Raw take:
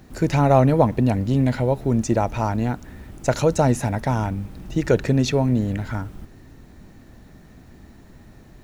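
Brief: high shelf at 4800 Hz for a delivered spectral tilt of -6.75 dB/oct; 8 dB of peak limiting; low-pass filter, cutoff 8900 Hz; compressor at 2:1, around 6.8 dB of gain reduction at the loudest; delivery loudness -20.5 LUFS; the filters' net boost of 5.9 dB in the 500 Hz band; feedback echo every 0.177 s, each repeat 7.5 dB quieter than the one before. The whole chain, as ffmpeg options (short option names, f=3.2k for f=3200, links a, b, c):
-af "lowpass=8.9k,equalizer=f=500:t=o:g=7,highshelf=f=4.8k:g=6,acompressor=threshold=-19dB:ratio=2,alimiter=limit=-14.5dB:level=0:latency=1,aecho=1:1:177|354|531|708|885:0.422|0.177|0.0744|0.0312|0.0131,volume=4dB"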